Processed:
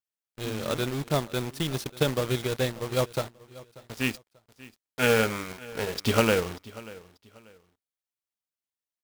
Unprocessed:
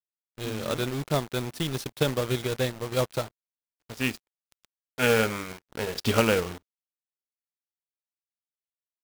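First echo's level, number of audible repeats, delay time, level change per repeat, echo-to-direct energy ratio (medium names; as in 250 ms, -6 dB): -20.0 dB, 2, 588 ms, -11.0 dB, -19.5 dB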